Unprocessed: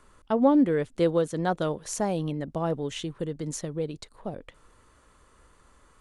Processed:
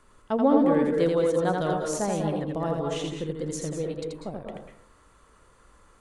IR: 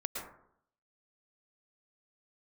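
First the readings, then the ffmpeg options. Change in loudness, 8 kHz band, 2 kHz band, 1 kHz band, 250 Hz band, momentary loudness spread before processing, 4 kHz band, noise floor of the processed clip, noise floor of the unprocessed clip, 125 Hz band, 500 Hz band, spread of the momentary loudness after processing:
+1.5 dB, +0.5 dB, +1.5 dB, +2.0 dB, +0.5 dB, 16 LU, +0.5 dB, −58 dBFS, −60 dBFS, +0.5 dB, +2.5 dB, 15 LU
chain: -filter_complex "[0:a]asplit=2[link_01][link_02];[1:a]atrim=start_sample=2205,adelay=83[link_03];[link_02][link_03]afir=irnorm=-1:irlink=0,volume=-2dB[link_04];[link_01][link_04]amix=inputs=2:normalize=0,volume=-1.5dB"

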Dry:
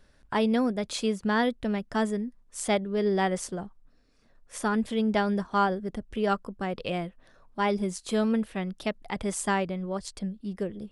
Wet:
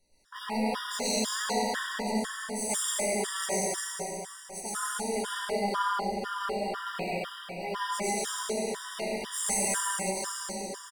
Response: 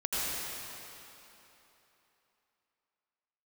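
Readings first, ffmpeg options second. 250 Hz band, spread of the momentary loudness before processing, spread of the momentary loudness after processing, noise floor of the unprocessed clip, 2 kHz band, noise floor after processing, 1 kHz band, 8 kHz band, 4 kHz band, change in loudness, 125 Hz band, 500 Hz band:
−8.5 dB, 9 LU, 8 LU, −61 dBFS, −0.5 dB, −46 dBFS, −1.5 dB, +9.5 dB, +3.5 dB, −2.0 dB, −8.5 dB, −4.0 dB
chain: -filter_complex "[0:a]bandreject=frequency=106.2:width_type=h:width=4,bandreject=frequency=212.4:width_type=h:width=4,bandreject=frequency=318.6:width_type=h:width=4,bandreject=frequency=424.8:width_type=h:width=4,bandreject=frequency=531:width_type=h:width=4,bandreject=frequency=637.2:width_type=h:width=4,bandreject=frequency=743.4:width_type=h:width=4,bandreject=frequency=849.6:width_type=h:width=4,bandreject=frequency=955.8:width_type=h:width=4,bandreject=frequency=1062:width_type=h:width=4,bandreject=frequency=1168.2:width_type=h:width=4,bandreject=frequency=1274.4:width_type=h:width=4,bandreject=frequency=1380.6:width_type=h:width=4,bandreject=frequency=1486.8:width_type=h:width=4,bandreject=frequency=1593:width_type=h:width=4,bandreject=frequency=1699.2:width_type=h:width=4,bandreject=frequency=1805.4:width_type=h:width=4,bandreject=frequency=1911.6:width_type=h:width=4,bandreject=frequency=2017.8:width_type=h:width=4,bandreject=frequency=2124:width_type=h:width=4,bandreject=frequency=2230.2:width_type=h:width=4,bandreject=frequency=2336.4:width_type=h:width=4,bandreject=frequency=2442.6:width_type=h:width=4,bandreject=frequency=2548.8:width_type=h:width=4,bandreject=frequency=2655:width_type=h:width=4,bandreject=frequency=2761.2:width_type=h:width=4,bandreject=frequency=2867.4:width_type=h:width=4,bandreject=frequency=2973.6:width_type=h:width=4,bandreject=frequency=3079.8:width_type=h:width=4,bandreject=frequency=3186:width_type=h:width=4,bandreject=frequency=3292.2:width_type=h:width=4,bandreject=frequency=3398.4:width_type=h:width=4,bandreject=frequency=3504.6:width_type=h:width=4,bandreject=frequency=3610.8:width_type=h:width=4,flanger=delay=16:depth=3.1:speed=1.2,bass=frequency=250:gain=-6,treble=frequency=4000:gain=12,acrossover=split=560|2600[link_01][link_02][link_03];[link_01]asoftclip=type=tanh:threshold=-32dB[link_04];[link_03]acrusher=bits=2:mode=log:mix=0:aa=0.000001[link_05];[link_04][link_02][link_05]amix=inputs=3:normalize=0,aecho=1:1:183.7|239.1:0.501|0.282[link_06];[1:a]atrim=start_sample=2205,asetrate=39690,aresample=44100[link_07];[link_06][link_07]afir=irnorm=-1:irlink=0,afftfilt=real='re*gt(sin(2*PI*2*pts/sr)*(1-2*mod(floor(b*sr/1024/960),2)),0)':imag='im*gt(sin(2*PI*2*pts/sr)*(1-2*mod(floor(b*sr/1024/960),2)),0)':win_size=1024:overlap=0.75,volume=-5.5dB"

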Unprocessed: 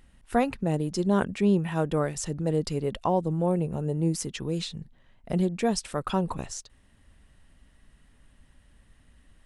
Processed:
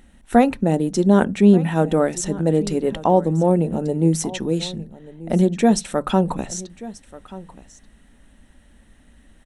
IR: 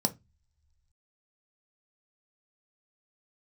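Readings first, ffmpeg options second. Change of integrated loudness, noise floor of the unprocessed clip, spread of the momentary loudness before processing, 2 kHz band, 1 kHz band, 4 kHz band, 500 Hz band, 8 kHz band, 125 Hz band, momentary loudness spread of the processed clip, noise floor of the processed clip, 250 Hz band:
+8.5 dB, −60 dBFS, 8 LU, +6.5 dB, +8.0 dB, +5.5 dB, +8.5 dB, +7.5 dB, +7.0 dB, 20 LU, −53 dBFS, +9.5 dB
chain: -filter_complex "[0:a]aecho=1:1:1184:0.119,asplit=2[link_01][link_02];[1:a]atrim=start_sample=2205[link_03];[link_02][link_03]afir=irnorm=-1:irlink=0,volume=-15.5dB[link_04];[link_01][link_04]amix=inputs=2:normalize=0,volume=5.5dB"

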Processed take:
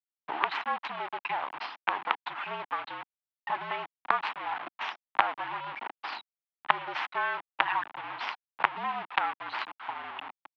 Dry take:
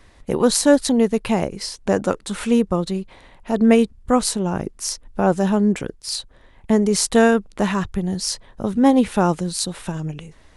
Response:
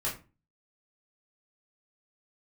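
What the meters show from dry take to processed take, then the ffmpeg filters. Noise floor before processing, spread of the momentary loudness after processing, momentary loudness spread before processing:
−50 dBFS, 10 LU, 12 LU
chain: -filter_complex "[0:a]aemphasis=mode=production:type=75kf,asplit=2[link_01][link_02];[1:a]atrim=start_sample=2205[link_03];[link_02][link_03]afir=irnorm=-1:irlink=0,volume=-24.5dB[link_04];[link_01][link_04]amix=inputs=2:normalize=0,acompressor=threshold=-29dB:ratio=4,afftfilt=real='re*gte(hypot(re,im),0.0355)':imag='im*gte(hypot(re,im),0.0355)':win_size=1024:overlap=0.75,acrusher=bits=4:dc=4:mix=0:aa=0.000001,highpass=frequency=340:width_type=q:width=0.5412,highpass=frequency=340:width_type=q:width=1.307,lowpass=frequency=3200:width_type=q:width=0.5176,lowpass=frequency=3200:width_type=q:width=0.7071,lowpass=frequency=3200:width_type=q:width=1.932,afreqshift=-56,lowshelf=frequency=660:width_type=q:width=3:gain=-10,volume=8dB"

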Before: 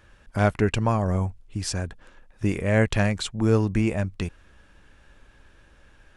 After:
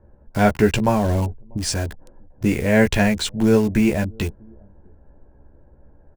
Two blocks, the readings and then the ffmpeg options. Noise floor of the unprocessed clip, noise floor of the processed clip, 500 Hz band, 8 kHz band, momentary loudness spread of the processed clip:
−56 dBFS, −52 dBFS, +5.5 dB, +6.5 dB, 10 LU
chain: -filter_complex "[0:a]bandreject=frequency=1200:width=5.2,asplit=2[link_01][link_02];[link_02]adelay=14,volume=-4.5dB[link_03];[link_01][link_03]amix=inputs=2:normalize=0,asplit=2[link_04][link_05];[link_05]adelay=641.4,volume=-29dB,highshelf=frequency=4000:gain=-14.4[link_06];[link_04][link_06]amix=inputs=2:normalize=0,acrossover=split=440|920[link_07][link_08][link_09];[link_09]acrusher=bits=6:mix=0:aa=0.000001[link_10];[link_07][link_08][link_10]amix=inputs=3:normalize=0,volume=4.5dB"

